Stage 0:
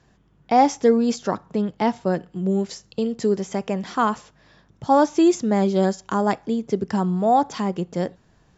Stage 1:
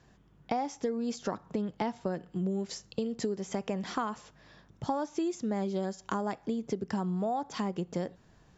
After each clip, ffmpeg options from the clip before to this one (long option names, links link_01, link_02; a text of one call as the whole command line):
ffmpeg -i in.wav -af "acompressor=threshold=-26dB:ratio=12,volume=-2.5dB" out.wav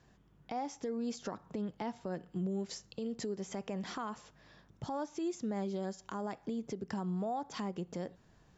ffmpeg -i in.wav -af "alimiter=level_in=1.5dB:limit=-24dB:level=0:latency=1:release=73,volume=-1.5dB,volume=-3.5dB" out.wav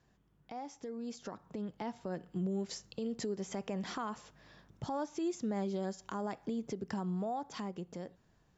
ffmpeg -i in.wav -af "dynaudnorm=framelen=490:gausssize=7:maxgain=7dB,volume=-6dB" out.wav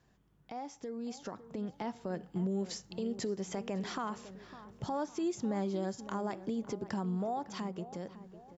ffmpeg -i in.wav -filter_complex "[0:a]asplit=2[link_01][link_02];[link_02]adelay=555,lowpass=frequency=2000:poles=1,volume=-14dB,asplit=2[link_03][link_04];[link_04]adelay=555,lowpass=frequency=2000:poles=1,volume=0.47,asplit=2[link_05][link_06];[link_06]adelay=555,lowpass=frequency=2000:poles=1,volume=0.47,asplit=2[link_07][link_08];[link_08]adelay=555,lowpass=frequency=2000:poles=1,volume=0.47[link_09];[link_01][link_03][link_05][link_07][link_09]amix=inputs=5:normalize=0,volume=1.5dB" out.wav